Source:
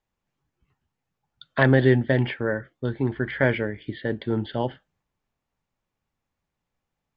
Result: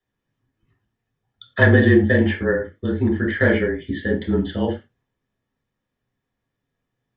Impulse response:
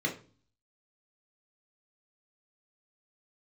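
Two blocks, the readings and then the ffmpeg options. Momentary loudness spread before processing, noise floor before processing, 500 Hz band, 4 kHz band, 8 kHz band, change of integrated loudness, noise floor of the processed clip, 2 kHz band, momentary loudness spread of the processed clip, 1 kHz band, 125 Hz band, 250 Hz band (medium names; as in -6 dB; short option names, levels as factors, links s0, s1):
13 LU, -84 dBFS, +4.0 dB, +2.5 dB, no reading, +5.0 dB, -81 dBFS, +6.0 dB, 12 LU, -0.5 dB, +3.5 dB, +6.0 dB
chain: -filter_complex "[0:a]asplit=2[s0][s1];[s1]volume=3.98,asoftclip=hard,volume=0.251,volume=0.316[s2];[s0][s2]amix=inputs=2:normalize=0,afreqshift=-30[s3];[1:a]atrim=start_sample=2205,atrim=end_sample=4410,asetrate=37926,aresample=44100[s4];[s3][s4]afir=irnorm=-1:irlink=0,volume=0.447"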